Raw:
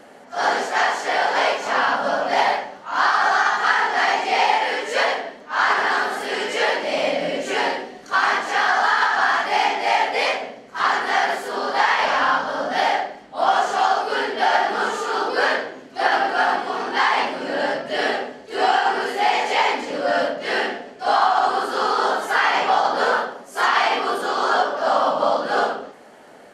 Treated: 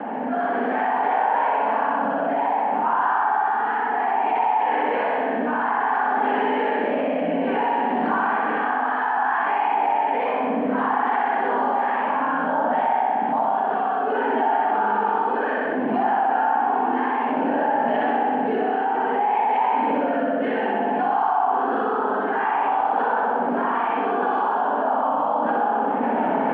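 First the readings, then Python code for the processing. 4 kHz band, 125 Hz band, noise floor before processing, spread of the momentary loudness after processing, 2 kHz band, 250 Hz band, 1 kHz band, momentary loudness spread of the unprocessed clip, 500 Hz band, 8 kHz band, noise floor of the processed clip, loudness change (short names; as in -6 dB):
under -15 dB, n/a, -43 dBFS, 3 LU, -7.0 dB, +7.0 dB, +0.5 dB, 6 LU, -1.0 dB, under -40 dB, -24 dBFS, -1.5 dB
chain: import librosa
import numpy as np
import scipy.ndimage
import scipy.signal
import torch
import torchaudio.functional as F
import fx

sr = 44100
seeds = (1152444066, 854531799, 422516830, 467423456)

y = fx.recorder_agc(x, sr, target_db=-9.0, rise_db_per_s=66.0, max_gain_db=30)
y = fx.air_absorb(y, sr, metres=400.0)
y = fx.rotary_switch(y, sr, hz=0.6, then_hz=7.0, switch_at_s=24.14)
y = fx.cabinet(y, sr, low_hz=210.0, low_slope=24, high_hz=2300.0, hz=(240.0, 370.0, 560.0, 890.0, 1300.0, 2000.0), db=(4, -9, -8, 8, -8, -9))
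y = fx.room_flutter(y, sr, wall_m=10.7, rt60_s=1.3)
y = fx.env_flatten(y, sr, amount_pct=70)
y = y * 10.0 ** (-7.5 / 20.0)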